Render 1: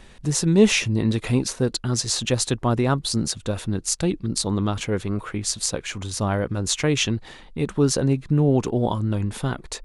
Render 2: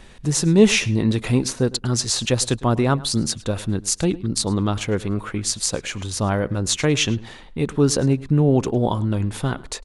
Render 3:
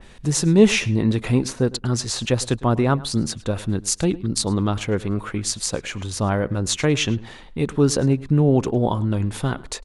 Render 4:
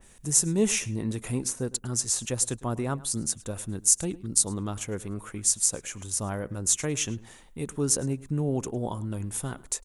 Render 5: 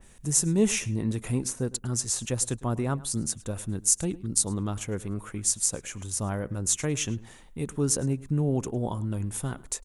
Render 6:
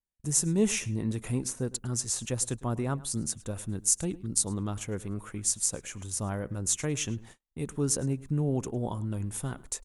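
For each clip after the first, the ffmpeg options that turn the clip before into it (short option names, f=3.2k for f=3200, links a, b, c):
-filter_complex "[0:a]asplit=2[a][b];[b]adelay=106,lowpass=f=4.9k:p=1,volume=-19.5dB,asplit=2[c][d];[d]adelay=106,lowpass=f=4.9k:p=1,volume=0.15[e];[a][c][e]amix=inputs=3:normalize=0,volume=2dB"
-af "adynamicequalizer=threshold=0.0126:dfrequency=3000:dqfactor=0.7:tfrequency=3000:tqfactor=0.7:attack=5:release=100:ratio=0.375:range=3:mode=cutabove:tftype=highshelf"
-af "aexciter=amount=8.6:drive=2:freq=6.1k,volume=-11dB"
-af "bass=f=250:g=3,treble=f=4k:g=-2"
-af "agate=range=-41dB:threshold=-45dB:ratio=16:detection=peak,volume=-2.5dB"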